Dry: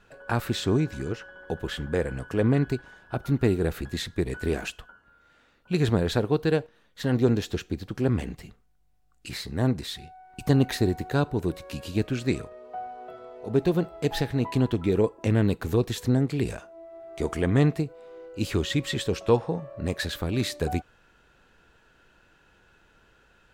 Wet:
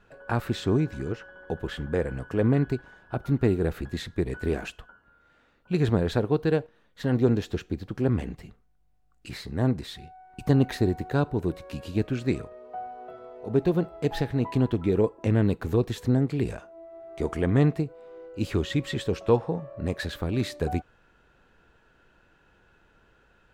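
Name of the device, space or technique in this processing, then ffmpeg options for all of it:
behind a face mask: -af "highshelf=frequency=2800:gain=-8"

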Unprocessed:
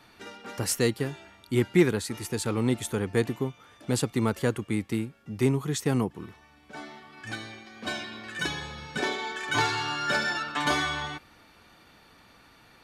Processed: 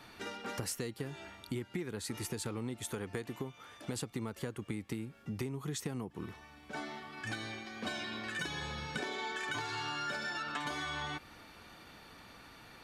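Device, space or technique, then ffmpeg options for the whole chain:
serial compression, peaks first: -filter_complex "[0:a]asettb=1/sr,asplit=3[link_01][link_02][link_03];[link_01]atrim=end=2.844[link_04];[link_02]atrim=start=2.84:end=3.96,asetpts=PTS-STARTPTS,afade=type=in:duration=0.004:curve=qsin,afade=type=out:start_time=1.116:duration=0.004:curve=qsin,lowshelf=frequency=370:gain=-5.5[link_05];[link_03]atrim=start=3.956[link_06];[link_04][link_05]acrossfade=duration=0.004:curve1=hsin:curve2=qsin[link_07];[link_07][link_06]acrossfade=duration=0.004:curve1=qsin:curve2=hsin,acompressor=threshold=-31dB:ratio=6,acompressor=threshold=-39dB:ratio=2.5,volume=1.5dB"

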